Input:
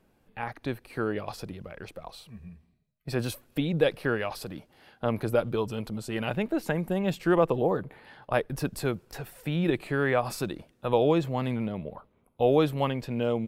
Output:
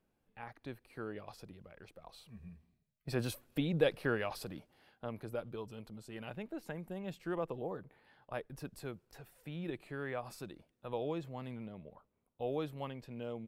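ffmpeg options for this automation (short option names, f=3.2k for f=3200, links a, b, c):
-af "volume=-6dB,afade=t=in:st=1.98:d=0.47:silence=0.421697,afade=t=out:st=4.48:d=0.62:silence=0.354813"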